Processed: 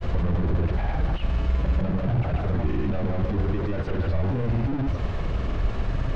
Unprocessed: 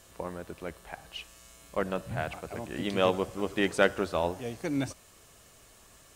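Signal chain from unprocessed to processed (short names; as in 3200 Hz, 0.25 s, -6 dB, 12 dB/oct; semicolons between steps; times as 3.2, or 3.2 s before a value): infinite clipping; RIAA curve playback; grains, pitch spread up and down by 0 st; air absorption 220 m; gain +2.5 dB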